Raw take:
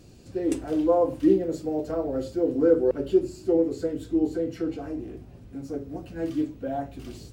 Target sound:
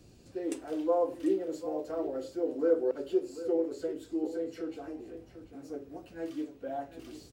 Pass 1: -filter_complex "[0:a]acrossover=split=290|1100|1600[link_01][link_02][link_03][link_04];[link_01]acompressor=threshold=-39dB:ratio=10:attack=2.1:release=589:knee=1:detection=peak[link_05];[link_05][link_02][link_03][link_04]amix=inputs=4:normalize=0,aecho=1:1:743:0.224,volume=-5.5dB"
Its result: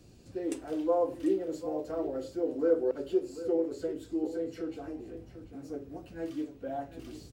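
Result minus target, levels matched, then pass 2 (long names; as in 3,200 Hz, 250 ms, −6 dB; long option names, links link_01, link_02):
downward compressor: peak gain reduction −7 dB
-filter_complex "[0:a]acrossover=split=290|1100|1600[link_01][link_02][link_03][link_04];[link_01]acompressor=threshold=-47dB:ratio=10:attack=2.1:release=589:knee=1:detection=peak[link_05];[link_05][link_02][link_03][link_04]amix=inputs=4:normalize=0,aecho=1:1:743:0.224,volume=-5.5dB"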